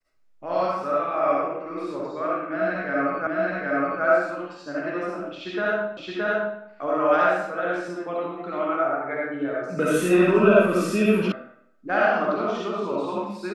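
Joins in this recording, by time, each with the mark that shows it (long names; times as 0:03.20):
0:03.27: the same again, the last 0.77 s
0:05.97: the same again, the last 0.62 s
0:11.32: cut off before it has died away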